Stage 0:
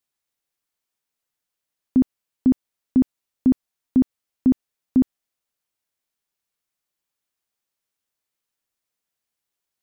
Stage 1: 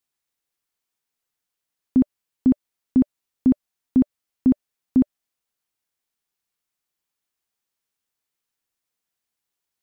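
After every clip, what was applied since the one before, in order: band-stop 590 Hz, Q 12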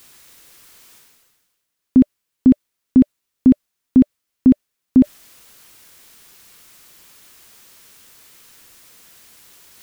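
peaking EQ 790 Hz -4.5 dB 0.38 oct; reverse; upward compressor, threshold -30 dBFS; reverse; trim +6 dB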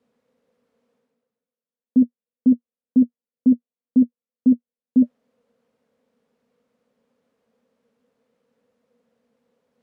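two resonant band-passes 340 Hz, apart 1 oct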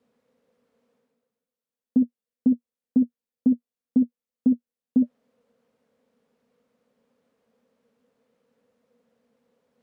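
compression, threshold -16 dBFS, peak gain reduction 5.5 dB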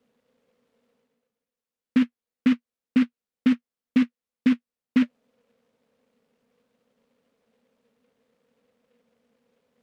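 delay time shaken by noise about 1.9 kHz, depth 0.083 ms

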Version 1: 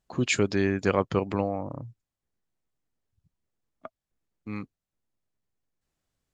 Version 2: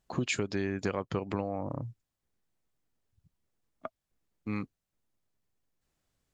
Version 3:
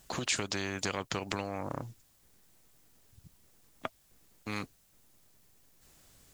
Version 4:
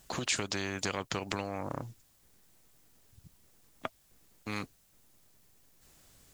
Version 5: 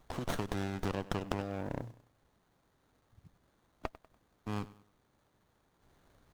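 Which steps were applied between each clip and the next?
compression 12:1, threshold -29 dBFS, peak gain reduction 12.5 dB; trim +2 dB
treble shelf 5 kHz +8.5 dB; spectrum-flattening compressor 2:1; trim +2.5 dB
no audible change
feedback delay 97 ms, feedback 41%, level -18 dB; sliding maximum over 17 samples; trim -2.5 dB

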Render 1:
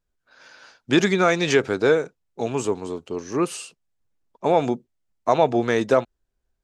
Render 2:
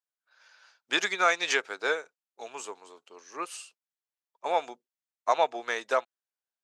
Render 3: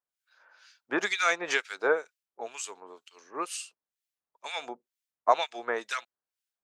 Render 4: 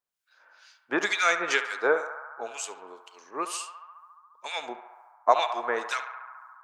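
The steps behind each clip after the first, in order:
high-pass 860 Hz 12 dB/octave; upward expansion 1.5:1, over -39 dBFS
harmonic tremolo 2.1 Hz, depth 100%, crossover 1.6 kHz; trim +5.5 dB
band-passed feedback delay 70 ms, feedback 84%, band-pass 1.1 kHz, level -9 dB; trim +2 dB

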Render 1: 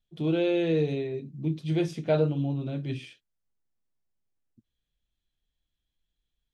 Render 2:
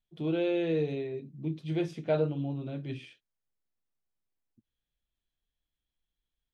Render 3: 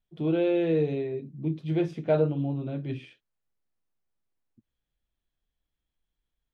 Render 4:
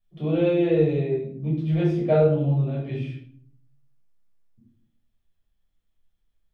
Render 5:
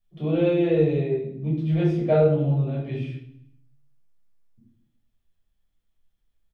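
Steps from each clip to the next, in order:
tone controls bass -3 dB, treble -6 dB; trim -3 dB
treble shelf 3.1 kHz -10 dB; trim +4.5 dB
simulated room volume 820 m³, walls furnished, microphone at 6 m; trim -4 dB
feedback delay 133 ms, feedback 41%, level -19 dB

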